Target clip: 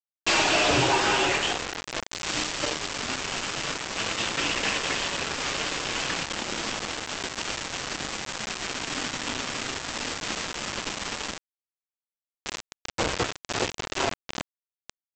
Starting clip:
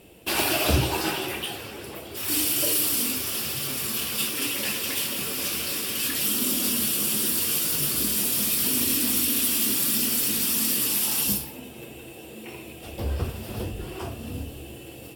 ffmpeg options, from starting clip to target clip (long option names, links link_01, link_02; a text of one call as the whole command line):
ffmpeg -i in.wav -filter_complex "[0:a]bandreject=frequency=50:width_type=h:width=6,bandreject=frequency=100:width_type=h:width=6,bandreject=frequency=150:width_type=h:width=6,bandreject=frequency=200:width_type=h:width=6,bandreject=frequency=250:width_type=h:width=6,bandreject=frequency=300:width_type=h:width=6,bandreject=frequency=350:width_type=h:width=6,asplit=2[link_01][link_02];[link_02]highpass=frequency=720:poles=1,volume=24dB,asoftclip=type=tanh:threshold=-9dB[link_03];[link_01][link_03]amix=inputs=2:normalize=0,lowpass=frequency=3600:poles=1,volume=-6dB,flanger=delay=5.6:depth=2.1:regen=-41:speed=0.47:shape=triangular,aresample=16000,acrusher=bits=3:mix=0:aa=0.000001,aresample=44100,adynamicequalizer=threshold=0.0178:dfrequency=2800:dqfactor=0.7:tfrequency=2800:tqfactor=0.7:attack=5:release=100:ratio=0.375:range=3:mode=cutabove:tftype=highshelf" out.wav